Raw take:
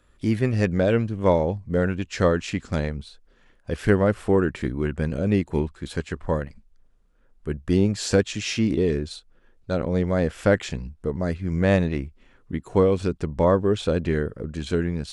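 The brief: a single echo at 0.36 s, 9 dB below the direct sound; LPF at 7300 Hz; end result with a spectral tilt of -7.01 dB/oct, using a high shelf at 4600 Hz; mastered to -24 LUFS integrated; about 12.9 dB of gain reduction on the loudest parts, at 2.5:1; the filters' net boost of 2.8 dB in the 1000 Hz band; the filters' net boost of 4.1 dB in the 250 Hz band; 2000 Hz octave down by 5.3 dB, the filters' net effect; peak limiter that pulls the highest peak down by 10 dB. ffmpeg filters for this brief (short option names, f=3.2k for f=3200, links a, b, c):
-af "lowpass=7.3k,equalizer=f=250:t=o:g=5.5,equalizer=f=1k:t=o:g=5.5,equalizer=f=2k:t=o:g=-8.5,highshelf=f=4.6k:g=-7,acompressor=threshold=-31dB:ratio=2.5,alimiter=level_in=1.5dB:limit=-24dB:level=0:latency=1,volume=-1.5dB,aecho=1:1:360:0.355,volume=12dB"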